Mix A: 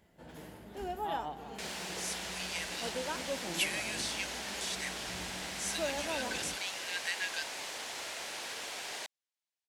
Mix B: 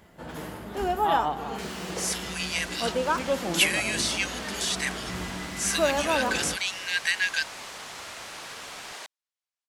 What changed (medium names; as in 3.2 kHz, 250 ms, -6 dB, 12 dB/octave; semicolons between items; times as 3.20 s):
speech +10.0 dB; first sound +11.0 dB; master: add peaking EQ 1.2 kHz +7 dB 0.54 oct